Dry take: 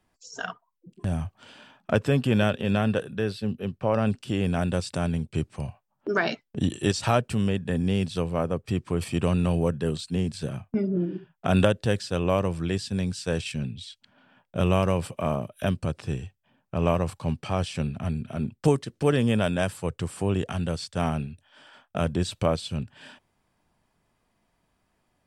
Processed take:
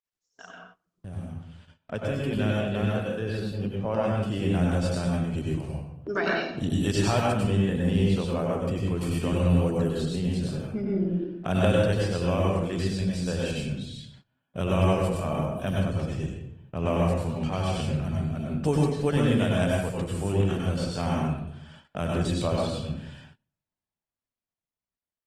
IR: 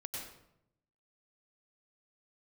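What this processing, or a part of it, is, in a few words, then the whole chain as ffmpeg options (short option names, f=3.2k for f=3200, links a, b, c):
speakerphone in a meeting room: -filter_complex "[1:a]atrim=start_sample=2205[a];[0:a][a]afir=irnorm=-1:irlink=0,dynaudnorm=f=300:g=17:m=10.5dB,agate=range=-20dB:threshold=-42dB:ratio=16:detection=peak,volume=-8dB" -ar 48000 -c:a libopus -b:a 20k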